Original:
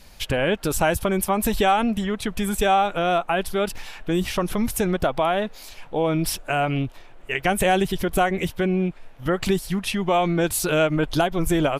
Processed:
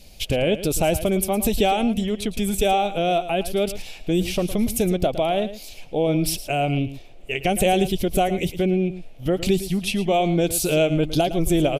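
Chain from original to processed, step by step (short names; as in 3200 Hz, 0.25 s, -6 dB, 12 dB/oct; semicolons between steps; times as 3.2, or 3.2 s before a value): band shelf 1300 Hz -13.5 dB 1.3 oct; echo 0.111 s -13.5 dB; gain +1.5 dB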